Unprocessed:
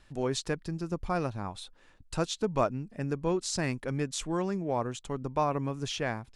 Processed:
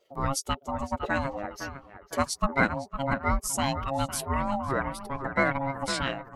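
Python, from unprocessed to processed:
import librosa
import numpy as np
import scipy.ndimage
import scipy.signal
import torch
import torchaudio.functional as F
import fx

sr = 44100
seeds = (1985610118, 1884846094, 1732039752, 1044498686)

y = fx.bin_expand(x, sr, power=1.5)
y = fx.echo_banded(y, sr, ms=507, feedback_pct=41, hz=650.0, wet_db=-7.5)
y = y * np.sin(2.0 * np.pi * 410.0 * np.arange(len(y)) / sr)
y = fx.formant_shift(y, sr, semitones=6)
y = F.gain(torch.from_numpy(y), 8.0).numpy()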